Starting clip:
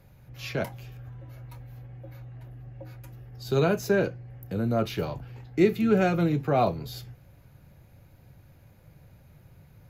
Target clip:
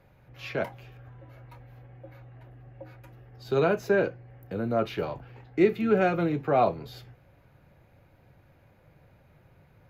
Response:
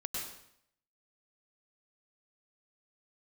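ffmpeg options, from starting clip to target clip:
-af "bass=frequency=250:gain=-8,treble=frequency=4000:gain=-13,volume=1.5dB"

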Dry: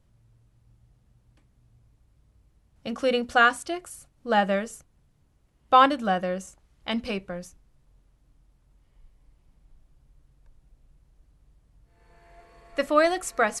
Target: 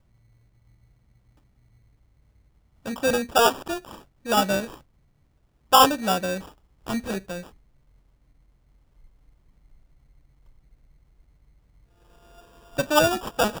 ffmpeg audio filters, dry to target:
ffmpeg -i in.wav -af "acrusher=samples=21:mix=1:aa=0.000001,volume=1dB" out.wav

